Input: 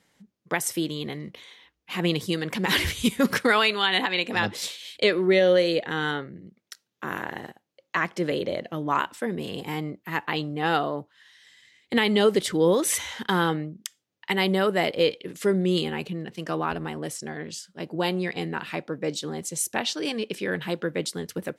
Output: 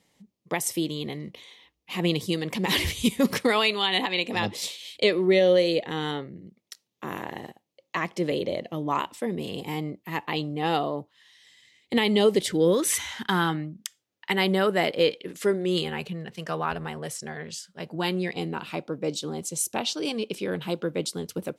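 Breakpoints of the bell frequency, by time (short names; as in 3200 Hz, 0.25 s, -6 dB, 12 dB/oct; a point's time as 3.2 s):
bell -12 dB 0.41 oct
12.35 s 1500 Hz
13.06 s 490 Hz
13.7 s 490 Hz
14.33 s 83 Hz
15.05 s 83 Hz
15.92 s 300 Hz
17.87 s 300 Hz
18.37 s 1800 Hz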